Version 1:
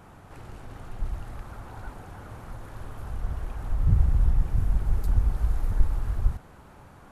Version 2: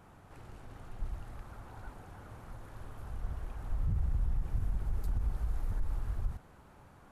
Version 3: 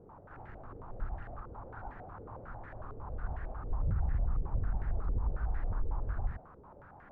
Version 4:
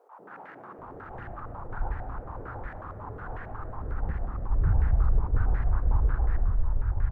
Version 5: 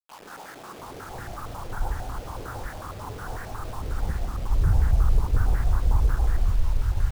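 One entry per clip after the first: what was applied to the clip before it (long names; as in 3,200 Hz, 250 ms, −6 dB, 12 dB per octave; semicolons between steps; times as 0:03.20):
brickwall limiter −16.5 dBFS, peak gain reduction 9 dB; level −7.5 dB
low-pass on a step sequencer 11 Hz 450–1,800 Hz
three-band delay without the direct sound highs, mids, lows 190/780 ms, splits 190/600 Hz; spring reverb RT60 3.8 s, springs 44/52/58 ms, chirp 35 ms, DRR 13 dB; level that may rise only so fast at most 250 dB per second; level +8.5 dB
bit-depth reduction 8 bits, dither none; level +3 dB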